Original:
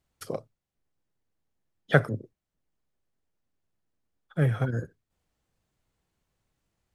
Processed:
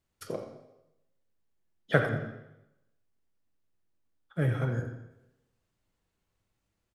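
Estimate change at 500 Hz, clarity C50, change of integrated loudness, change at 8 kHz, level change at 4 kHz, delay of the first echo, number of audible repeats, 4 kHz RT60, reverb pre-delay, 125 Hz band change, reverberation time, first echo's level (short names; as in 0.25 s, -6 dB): -2.0 dB, 5.5 dB, -3.0 dB, n/a, -2.5 dB, 86 ms, 1, 0.85 s, 4 ms, -3.0 dB, 0.90 s, -12.0 dB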